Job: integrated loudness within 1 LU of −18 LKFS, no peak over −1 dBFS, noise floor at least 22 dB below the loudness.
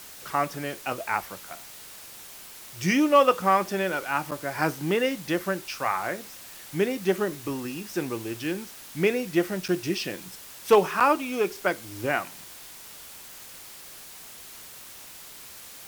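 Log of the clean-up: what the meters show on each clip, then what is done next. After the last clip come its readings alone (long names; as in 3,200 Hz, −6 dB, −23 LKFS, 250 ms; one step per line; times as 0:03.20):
number of dropouts 3; longest dropout 6.2 ms; background noise floor −45 dBFS; target noise floor −49 dBFS; integrated loudness −26.5 LKFS; sample peak −8.0 dBFS; target loudness −18.0 LKFS
→ repair the gap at 0:04.31/0:09.68/0:11.00, 6.2 ms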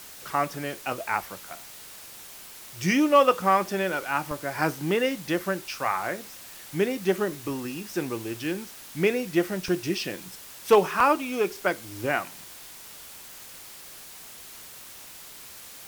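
number of dropouts 0; background noise floor −45 dBFS; target noise floor −49 dBFS
→ noise reduction from a noise print 6 dB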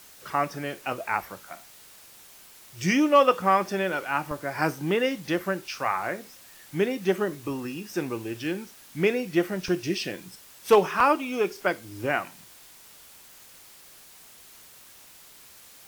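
background noise floor −51 dBFS; integrated loudness −26.5 LKFS; sample peak −8.0 dBFS; target loudness −18.0 LKFS
→ level +8.5 dB
brickwall limiter −1 dBFS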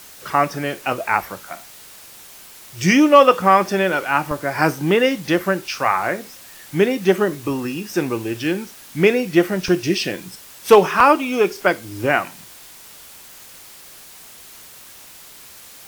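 integrated loudness −18.0 LKFS; sample peak −1.0 dBFS; background noise floor −42 dBFS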